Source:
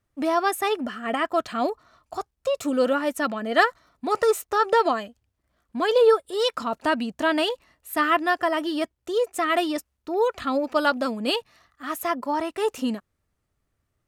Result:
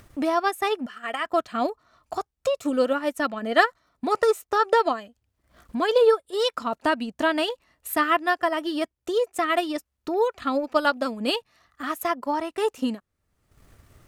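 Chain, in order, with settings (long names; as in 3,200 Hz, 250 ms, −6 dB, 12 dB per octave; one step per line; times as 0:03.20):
0:00.86–0:01.26: high-pass filter 1,200 Hz 6 dB per octave
transient designer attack +3 dB, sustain −6 dB
in parallel at −1 dB: upward compression, threshold −21 dBFS
on the sum: level −7 dB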